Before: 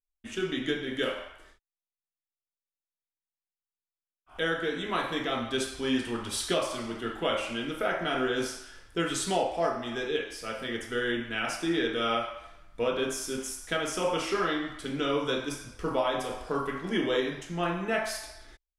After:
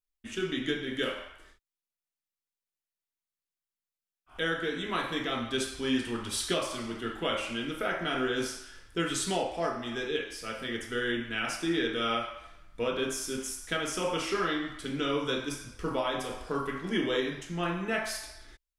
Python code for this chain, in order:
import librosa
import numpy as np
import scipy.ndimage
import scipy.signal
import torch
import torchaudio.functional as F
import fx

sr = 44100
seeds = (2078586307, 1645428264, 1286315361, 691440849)

y = fx.peak_eq(x, sr, hz=690.0, db=-4.5, octaves=1.2)